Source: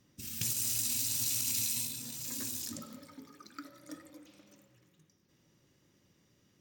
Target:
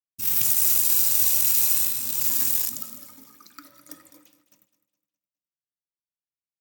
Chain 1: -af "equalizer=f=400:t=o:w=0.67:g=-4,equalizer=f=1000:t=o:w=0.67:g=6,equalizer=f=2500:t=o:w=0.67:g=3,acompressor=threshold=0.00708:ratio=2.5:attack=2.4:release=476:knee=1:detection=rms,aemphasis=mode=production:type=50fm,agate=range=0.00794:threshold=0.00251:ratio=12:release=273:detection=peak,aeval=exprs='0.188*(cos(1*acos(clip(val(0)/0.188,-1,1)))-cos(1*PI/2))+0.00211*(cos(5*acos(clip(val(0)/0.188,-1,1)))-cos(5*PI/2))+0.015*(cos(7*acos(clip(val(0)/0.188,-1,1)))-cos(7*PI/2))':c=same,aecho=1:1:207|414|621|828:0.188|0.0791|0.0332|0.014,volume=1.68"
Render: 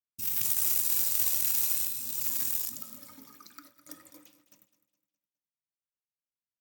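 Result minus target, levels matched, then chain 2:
compression: peak gain reduction +5.5 dB
-af "equalizer=f=400:t=o:w=0.67:g=-4,equalizer=f=1000:t=o:w=0.67:g=6,equalizer=f=2500:t=o:w=0.67:g=3,acompressor=threshold=0.0211:ratio=2.5:attack=2.4:release=476:knee=1:detection=rms,aemphasis=mode=production:type=50fm,agate=range=0.00794:threshold=0.00251:ratio=12:release=273:detection=peak,aeval=exprs='0.188*(cos(1*acos(clip(val(0)/0.188,-1,1)))-cos(1*PI/2))+0.00211*(cos(5*acos(clip(val(0)/0.188,-1,1)))-cos(5*PI/2))+0.015*(cos(7*acos(clip(val(0)/0.188,-1,1)))-cos(7*PI/2))':c=same,aecho=1:1:207|414|621|828:0.188|0.0791|0.0332|0.014,volume=1.68"

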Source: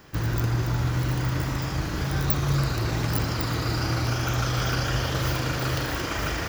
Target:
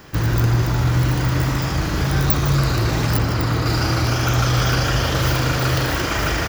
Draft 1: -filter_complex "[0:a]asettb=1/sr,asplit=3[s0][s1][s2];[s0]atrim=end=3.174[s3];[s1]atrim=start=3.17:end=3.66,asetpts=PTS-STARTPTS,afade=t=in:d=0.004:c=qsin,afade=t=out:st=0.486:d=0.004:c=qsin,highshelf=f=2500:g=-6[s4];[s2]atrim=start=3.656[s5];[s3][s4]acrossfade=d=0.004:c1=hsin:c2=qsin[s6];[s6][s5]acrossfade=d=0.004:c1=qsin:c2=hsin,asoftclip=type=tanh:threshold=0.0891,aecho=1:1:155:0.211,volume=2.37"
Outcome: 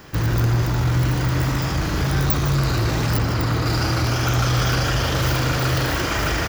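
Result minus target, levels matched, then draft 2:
saturation: distortion +9 dB
-filter_complex "[0:a]asettb=1/sr,asplit=3[s0][s1][s2];[s0]atrim=end=3.174[s3];[s1]atrim=start=3.17:end=3.66,asetpts=PTS-STARTPTS,afade=t=in:d=0.004:c=qsin,afade=t=out:st=0.486:d=0.004:c=qsin,highshelf=f=2500:g=-6[s4];[s2]atrim=start=3.656[s5];[s3][s4]acrossfade=d=0.004:c1=hsin:c2=qsin[s6];[s6][s5]acrossfade=d=0.004:c1=qsin:c2=hsin,asoftclip=type=tanh:threshold=0.188,aecho=1:1:155:0.211,volume=2.37"

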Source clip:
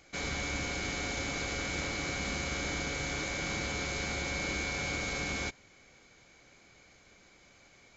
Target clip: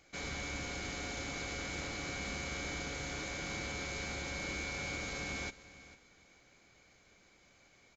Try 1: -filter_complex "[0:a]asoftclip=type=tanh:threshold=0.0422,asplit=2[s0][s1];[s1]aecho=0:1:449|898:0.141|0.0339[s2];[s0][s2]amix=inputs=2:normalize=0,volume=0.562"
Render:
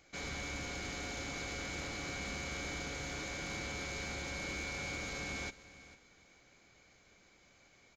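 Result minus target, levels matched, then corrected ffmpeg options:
saturation: distortion +10 dB
-filter_complex "[0:a]asoftclip=type=tanh:threshold=0.0841,asplit=2[s0][s1];[s1]aecho=0:1:449|898:0.141|0.0339[s2];[s0][s2]amix=inputs=2:normalize=0,volume=0.562"

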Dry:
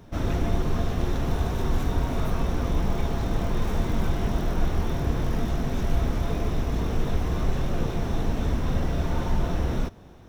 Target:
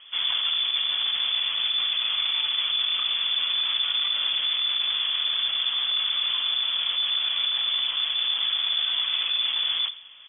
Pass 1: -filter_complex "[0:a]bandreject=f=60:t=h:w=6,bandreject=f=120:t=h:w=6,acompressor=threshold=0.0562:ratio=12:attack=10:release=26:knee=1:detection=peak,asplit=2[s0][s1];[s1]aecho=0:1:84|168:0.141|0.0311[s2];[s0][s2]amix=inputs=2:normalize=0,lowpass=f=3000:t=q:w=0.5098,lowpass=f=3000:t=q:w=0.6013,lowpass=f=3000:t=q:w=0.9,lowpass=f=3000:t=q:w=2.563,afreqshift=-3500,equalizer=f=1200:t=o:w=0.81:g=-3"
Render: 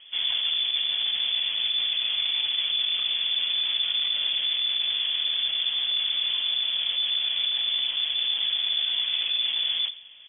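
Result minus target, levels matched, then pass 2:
1 kHz band -8.5 dB
-filter_complex "[0:a]bandreject=f=60:t=h:w=6,bandreject=f=120:t=h:w=6,acompressor=threshold=0.0562:ratio=12:attack=10:release=26:knee=1:detection=peak,asplit=2[s0][s1];[s1]aecho=0:1:84|168:0.141|0.0311[s2];[s0][s2]amix=inputs=2:normalize=0,lowpass=f=3000:t=q:w=0.5098,lowpass=f=3000:t=q:w=0.6013,lowpass=f=3000:t=q:w=0.9,lowpass=f=3000:t=q:w=2.563,afreqshift=-3500,equalizer=f=1200:t=o:w=0.81:g=9"

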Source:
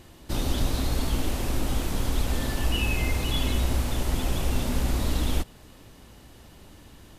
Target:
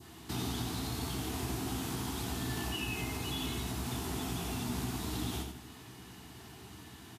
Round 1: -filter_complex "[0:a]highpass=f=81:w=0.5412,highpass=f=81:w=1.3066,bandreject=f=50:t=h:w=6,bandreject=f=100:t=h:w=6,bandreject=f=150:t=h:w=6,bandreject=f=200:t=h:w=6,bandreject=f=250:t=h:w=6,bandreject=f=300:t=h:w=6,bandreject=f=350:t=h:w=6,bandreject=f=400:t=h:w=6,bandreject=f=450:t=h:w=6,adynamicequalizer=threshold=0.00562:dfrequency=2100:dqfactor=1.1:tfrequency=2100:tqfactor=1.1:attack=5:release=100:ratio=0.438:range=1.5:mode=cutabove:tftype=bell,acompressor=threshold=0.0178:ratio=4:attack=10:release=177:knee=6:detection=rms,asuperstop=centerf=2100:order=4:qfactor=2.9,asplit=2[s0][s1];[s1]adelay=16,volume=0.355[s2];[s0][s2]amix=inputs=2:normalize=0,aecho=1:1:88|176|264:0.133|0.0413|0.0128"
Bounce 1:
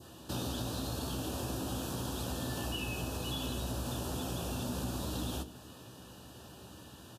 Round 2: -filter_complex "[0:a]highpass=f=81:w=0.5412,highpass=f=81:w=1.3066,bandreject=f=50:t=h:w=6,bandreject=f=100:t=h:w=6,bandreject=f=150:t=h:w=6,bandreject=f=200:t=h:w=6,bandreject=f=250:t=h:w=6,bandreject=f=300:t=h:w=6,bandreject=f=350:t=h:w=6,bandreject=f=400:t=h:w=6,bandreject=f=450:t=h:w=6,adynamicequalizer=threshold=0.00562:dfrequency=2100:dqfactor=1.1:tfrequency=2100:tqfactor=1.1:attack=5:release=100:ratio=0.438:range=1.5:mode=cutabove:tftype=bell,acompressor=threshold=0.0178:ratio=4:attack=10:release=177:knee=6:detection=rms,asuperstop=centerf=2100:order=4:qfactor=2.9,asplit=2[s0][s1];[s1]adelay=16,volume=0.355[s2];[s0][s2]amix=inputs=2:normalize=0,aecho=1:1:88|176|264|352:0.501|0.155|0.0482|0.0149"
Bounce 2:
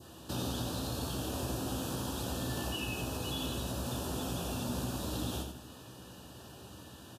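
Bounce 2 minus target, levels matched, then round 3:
500 Hz band +3.0 dB
-filter_complex "[0:a]highpass=f=81:w=0.5412,highpass=f=81:w=1.3066,bandreject=f=50:t=h:w=6,bandreject=f=100:t=h:w=6,bandreject=f=150:t=h:w=6,bandreject=f=200:t=h:w=6,bandreject=f=250:t=h:w=6,bandreject=f=300:t=h:w=6,bandreject=f=350:t=h:w=6,bandreject=f=400:t=h:w=6,bandreject=f=450:t=h:w=6,adynamicequalizer=threshold=0.00562:dfrequency=2100:dqfactor=1.1:tfrequency=2100:tqfactor=1.1:attack=5:release=100:ratio=0.438:range=1.5:mode=cutabove:tftype=bell,acompressor=threshold=0.0178:ratio=4:attack=10:release=177:knee=6:detection=rms,asuperstop=centerf=550:order=4:qfactor=2.9,asplit=2[s0][s1];[s1]adelay=16,volume=0.355[s2];[s0][s2]amix=inputs=2:normalize=0,aecho=1:1:88|176|264|352:0.501|0.155|0.0482|0.0149"

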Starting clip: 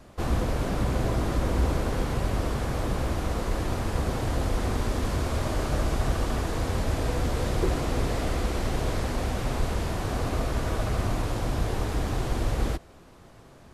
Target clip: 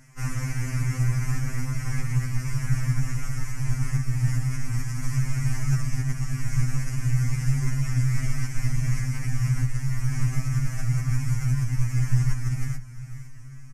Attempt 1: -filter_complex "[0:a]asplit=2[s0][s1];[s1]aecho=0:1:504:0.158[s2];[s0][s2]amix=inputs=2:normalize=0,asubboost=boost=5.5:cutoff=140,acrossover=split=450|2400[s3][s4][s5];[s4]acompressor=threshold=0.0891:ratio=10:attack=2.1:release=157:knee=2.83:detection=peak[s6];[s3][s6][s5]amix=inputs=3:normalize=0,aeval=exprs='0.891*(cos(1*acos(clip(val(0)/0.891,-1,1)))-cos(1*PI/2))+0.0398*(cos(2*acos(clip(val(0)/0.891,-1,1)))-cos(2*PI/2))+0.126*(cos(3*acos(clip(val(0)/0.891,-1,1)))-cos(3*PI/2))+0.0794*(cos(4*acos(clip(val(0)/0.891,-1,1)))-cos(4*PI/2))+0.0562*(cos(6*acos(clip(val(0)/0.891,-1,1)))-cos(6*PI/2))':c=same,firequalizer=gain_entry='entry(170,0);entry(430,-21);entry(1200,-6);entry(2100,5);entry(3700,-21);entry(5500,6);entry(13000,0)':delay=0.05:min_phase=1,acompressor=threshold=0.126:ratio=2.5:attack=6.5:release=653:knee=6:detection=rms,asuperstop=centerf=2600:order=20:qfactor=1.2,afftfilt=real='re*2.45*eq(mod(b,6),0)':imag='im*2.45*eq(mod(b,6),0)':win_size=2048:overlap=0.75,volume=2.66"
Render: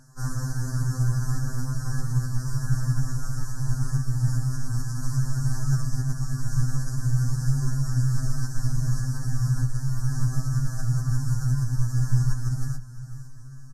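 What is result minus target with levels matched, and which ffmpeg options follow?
2 kHz band -5.5 dB
-filter_complex "[0:a]asplit=2[s0][s1];[s1]aecho=0:1:504:0.158[s2];[s0][s2]amix=inputs=2:normalize=0,asubboost=boost=5.5:cutoff=140,acrossover=split=450|2400[s3][s4][s5];[s4]acompressor=threshold=0.0891:ratio=10:attack=2.1:release=157:knee=2.83:detection=peak[s6];[s3][s6][s5]amix=inputs=3:normalize=0,aeval=exprs='0.891*(cos(1*acos(clip(val(0)/0.891,-1,1)))-cos(1*PI/2))+0.0398*(cos(2*acos(clip(val(0)/0.891,-1,1)))-cos(2*PI/2))+0.126*(cos(3*acos(clip(val(0)/0.891,-1,1)))-cos(3*PI/2))+0.0794*(cos(4*acos(clip(val(0)/0.891,-1,1)))-cos(4*PI/2))+0.0562*(cos(6*acos(clip(val(0)/0.891,-1,1)))-cos(6*PI/2))':c=same,firequalizer=gain_entry='entry(170,0);entry(430,-21);entry(1200,-6);entry(2100,5);entry(3700,-21);entry(5500,6);entry(13000,0)':delay=0.05:min_phase=1,acompressor=threshold=0.126:ratio=2.5:attack=6.5:release=653:knee=6:detection=rms,afftfilt=real='re*2.45*eq(mod(b,6),0)':imag='im*2.45*eq(mod(b,6),0)':win_size=2048:overlap=0.75,volume=2.66"

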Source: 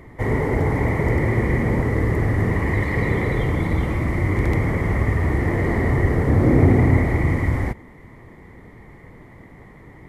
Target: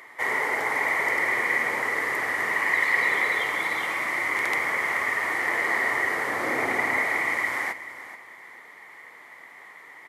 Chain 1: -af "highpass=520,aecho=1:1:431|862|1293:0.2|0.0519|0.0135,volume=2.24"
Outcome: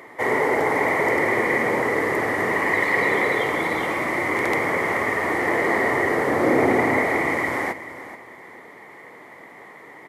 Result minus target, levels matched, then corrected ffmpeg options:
500 Hz band +9.0 dB
-af "highpass=1200,aecho=1:1:431|862|1293:0.2|0.0519|0.0135,volume=2.24"

